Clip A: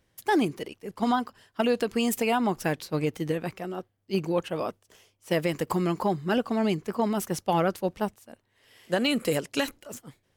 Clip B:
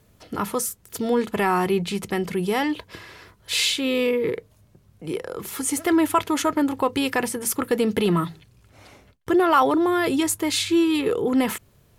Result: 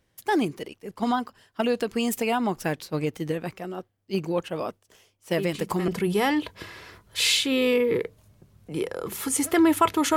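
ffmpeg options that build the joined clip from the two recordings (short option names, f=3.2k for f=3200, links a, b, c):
-filter_complex "[1:a]asplit=2[a][b];[0:a]apad=whole_dur=10.16,atrim=end=10.16,atrim=end=5.882[c];[b]atrim=start=2.208:end=6.49[d];[a]atrim=start=1.71:end=2.21,asetpts=PTS-STARTPTS,volume=-10dB,afade=t=in:d=0.004:c=hsin,afade=t=out:st=0.496:d=0.004:c=hsin,adelay=5380[e];[c][d]acrossfade=d=0.004:c1=hsin:c2=hsin[f];[f][e]amix=inputs=2:normalize=0"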